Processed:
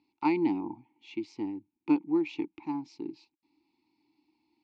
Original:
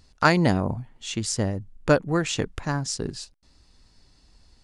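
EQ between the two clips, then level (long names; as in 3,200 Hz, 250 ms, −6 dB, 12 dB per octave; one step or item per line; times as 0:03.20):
formant filter u
loudspeaker in its box 100–5,600 Hz, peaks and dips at 340 Hz +10 dB, 900 Hz +5 dB, 2,500 Hz +6 dB, 4,200 Hz +5 dB
high-shelf EQ 3,500 Hz +6.5 dB
−2.0 dB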